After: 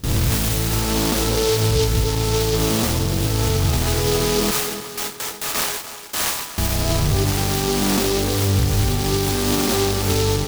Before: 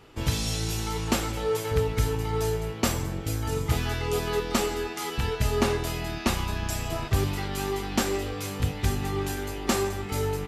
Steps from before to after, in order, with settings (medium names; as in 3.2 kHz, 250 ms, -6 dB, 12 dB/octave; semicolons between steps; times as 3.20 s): reverse spectral sustain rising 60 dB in 1.24 s; 4.51–6.58 s: high-pass 1.3 kHz 12 dB/octave; peak limiter -18.5 dBFS, peak gain reduction 10 dB; gate with hold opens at -21 dBFS; tape echo 299 ms, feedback 59%, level -10 dB, low-pass 2.8 kHz; delay time shaken by noise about 4.2 kHz, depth 0.14 ms; trim +8.5 dB